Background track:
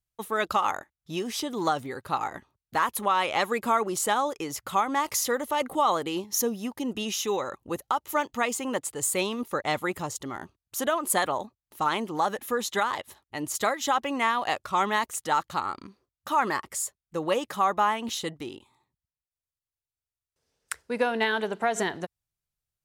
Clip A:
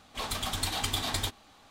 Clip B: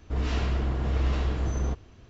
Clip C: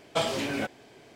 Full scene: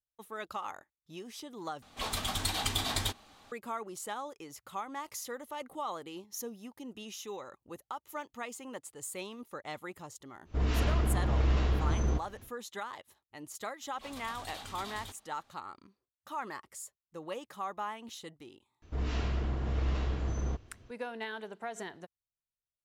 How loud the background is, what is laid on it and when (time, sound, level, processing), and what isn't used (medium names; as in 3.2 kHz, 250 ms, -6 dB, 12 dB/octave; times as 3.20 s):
background track -14 dB
1.82 s: replace with A -1 dB
10.44 s: add B -1.5 dB, fades 0.10 s
13.82 s: add A -12 dB + transient shaper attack -11 dB, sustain 0 dB
18.82 s: add B -5.5 dB
not used: C